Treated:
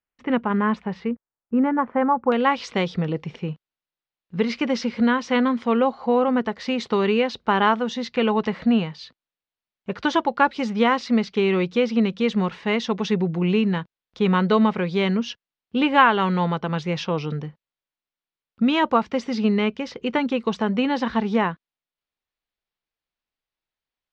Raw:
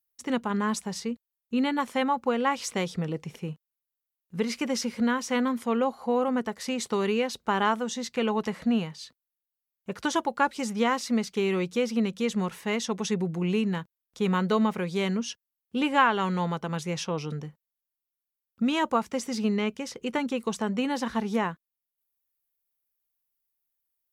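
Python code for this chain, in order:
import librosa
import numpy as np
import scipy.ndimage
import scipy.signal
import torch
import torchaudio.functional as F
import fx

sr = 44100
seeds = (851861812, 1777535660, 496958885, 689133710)

y = fx.lowpass(x, sr, hz=fx.steps((0.0, 2700.0), (1.11, 1600.0), (2.32, 4400.0)), slope=24)
y = F.gain(torch.from_numpy(y), 6.0).numpy()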